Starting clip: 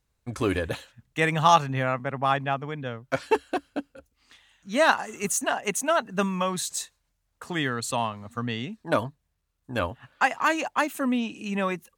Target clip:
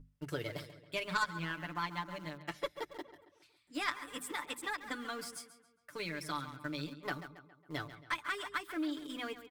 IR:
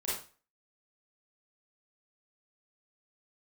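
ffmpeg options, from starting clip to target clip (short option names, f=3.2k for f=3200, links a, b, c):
-filter_complex "[0:a]asplit=2[a][b];[b]adelay=173,lowpass=f=3.5k:p=1,volume=-12dB,asplit=2[c][d];[d]adelay=173,lowpass=f=3.5k:p=1,volume=0.5,asplit=2[e][f];[f]adelay=173,lowpass=f=3.5k:p=1,volume=0.5,asplit=2[g][h];[h]adelay=173,lowpass=f=3.5k:p=1,volume=0.5,asplit=2[i][j];[j]adelay=173,lowpass=f=3.5k:p=1,volume=0.5[k];[a][c][e][g][i][k]amix=inputs=6:normalize=0,acrossover=split=6300[l][m];[m]acompressor=threshold=-44dB:ratio=4:attack=1:release=60[n];[l][n]amix=inputs=2:normalize=0,asetrate=55566,aresample=44100,asplit=2[o][p];[p]aeval=exprs='val(0)*gte(abs(val(0)),0.0299)':c=same,volume=-8dB[q];[o][q]amix=inputs=2:normalize=0,aeval=exprs='val(0)+0.0141*(sin(2*PI*50*n/s)+sin(2*PI*2*50*n/s)/2+sin(2*PI*3*50*n/s)/3+sin(2*PI*4*50*n/s)/4+sin(2*PI*5*50*n/s)/5)':c=same,aeval=exprs='0.75*(cos(1*acos(clip(val(0)/0.75,-1,1)))-cos(1*PI/2))+0.133*(cos(3*acos(clip(val(0)/0.75,-1,1)))-cos(3*PI/2))':c=same,equalizer=f=760:w=4.7:g=-10,acompressor=threshold=-31dB:ratio=2,bandreject=f=50:t=h:w=6,bandreject=f=100:t=h:w=6,bandreject=f=150:t=h:w=6,bandreject=f=200:t=h:w=6,bandreject=f=250:t=h:w=6,aecho=1:1:6.8:0.75,volume=-7.5dB"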